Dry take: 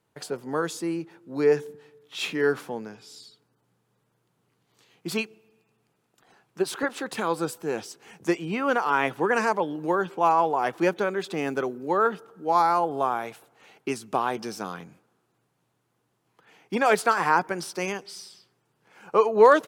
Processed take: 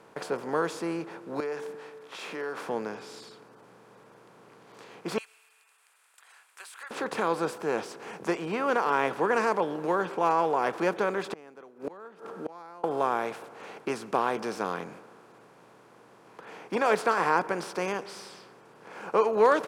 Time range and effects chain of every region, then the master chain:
1.40–2.69 s: high-pass 590 Hz 6 dB/octave + compression 3:1, threshold -37 dBFS
5.18–6.91 s: Bessel high-pass 2.7 kHz, order 4 + resonant high shelf 6.9 kHz +7.5 dB, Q 3 + compression 3:1, threshold -43 dBFS
11.27–12.84 s: resonant low shelf 140 Hz -6 dB, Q 1.5 + inverted gate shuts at -25 dBFS, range -35 dB
whole clip: spectral levelling over time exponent 0.6; treble shelf 9.3 kHz -9 dB; trim -7 dB

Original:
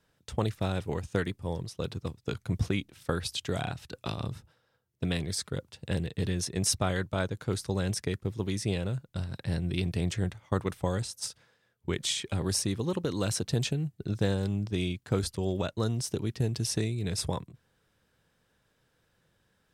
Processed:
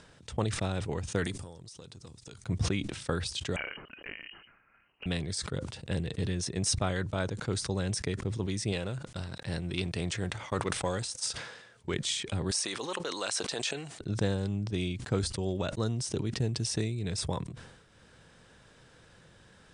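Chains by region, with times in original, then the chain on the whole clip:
1.24–2.44 s: tone controls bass -2 dB, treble +12 dB + compression 10:1, threshold -45 dBFS
3.56–5.06 s: high-pass 1 kHz 6 dB/octave + frequency inversion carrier 3 kHz + tape noise reduction on one side only decoder only
8.72–11.94 s: bass shelf 290 Hz -8.5 dB + waveshaping leveller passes 1
12.51–14.01 s: high-pass 700 Hz + level flattener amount 50%
whole clip: upward compressor, threshold -41 dBFS; steep low-pass 9.7 kHz 96 dB/octave; decay stretcher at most 58 dB/s; trim -2 dB

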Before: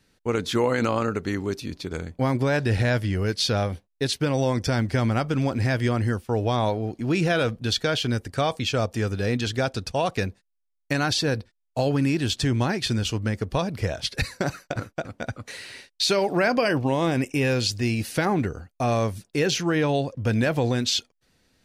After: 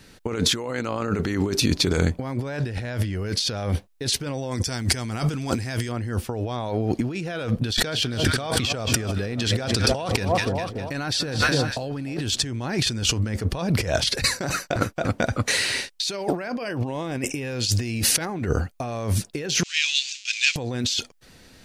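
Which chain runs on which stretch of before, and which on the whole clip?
4.51–5.92 s: peaking EQ 9.2 kHz +11.5 dB 2.2 oct + band-stop 560 Hz, Q 8.8
7.59–12.22 s: peaking EQ 6.6 kHz -5 dB 0.22 oct + two-band feedback delay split 1.1 kHz, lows 289 ms, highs 202 ms, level -14.5 dB + decay stretcher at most 91 dB/s
19.63–20.56 s: jump at every zero crossing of -30.5 dBFS + elliptic band-pass 2.5–7.1 kHz, stop band 70 dB + three bands expanded up and down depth 70%
whole clip: compressor with a negative ratio -33 dBFS, ratio -1; dynamic bell 7 kHz, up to +4 dB, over -46 dBFS, Q 0.85; trim +7 dB

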